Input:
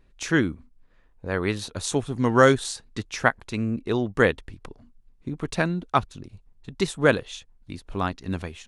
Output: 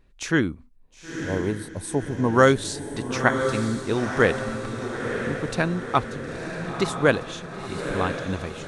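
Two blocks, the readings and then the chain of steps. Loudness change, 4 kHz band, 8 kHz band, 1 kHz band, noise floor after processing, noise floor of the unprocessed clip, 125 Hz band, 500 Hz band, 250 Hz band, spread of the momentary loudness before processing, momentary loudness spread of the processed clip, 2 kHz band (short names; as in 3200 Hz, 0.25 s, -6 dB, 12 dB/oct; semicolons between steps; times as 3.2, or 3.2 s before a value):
0.0 dB, 0.0 dB, 0.0 dB, +1.0 dB, -51 dBFS, -59 dBFS, +1.0 dB, +1.0 dB, +1.0 dB, 20 LU, 12 LU, +1.0 dB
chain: spectral gain 0.76–2.29, 1100–7800 Hz -14 dB; on a send: diffused feedback echo 0.969 s, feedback 54%, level -6.5 dB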